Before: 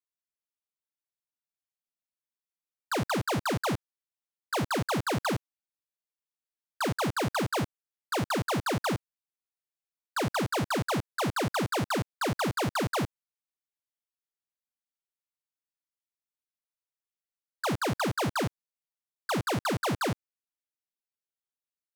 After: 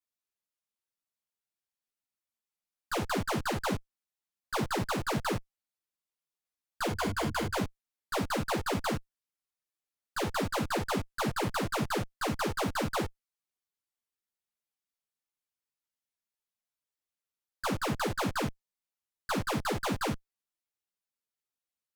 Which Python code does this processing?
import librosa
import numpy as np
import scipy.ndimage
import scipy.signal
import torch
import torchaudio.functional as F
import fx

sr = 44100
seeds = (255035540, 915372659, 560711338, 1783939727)

y = fx.ripple_eq(x, sr, per_octave=1.8, db=9, at=(6.89, 7.56))
y = fx.tube_stage(y, sr, drive_db=31.0, bias=0.5)
y = fx.ensemble(y, sr)
y = y * 10.0 ** (5.5 / 20.0)